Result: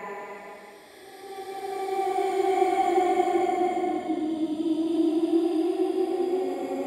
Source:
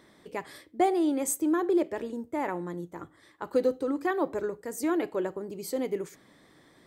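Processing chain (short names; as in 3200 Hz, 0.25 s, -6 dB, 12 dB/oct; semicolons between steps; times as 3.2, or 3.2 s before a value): local time reversal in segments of 0.179 s; Paulstretch 13×, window 0.25 s, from 0.55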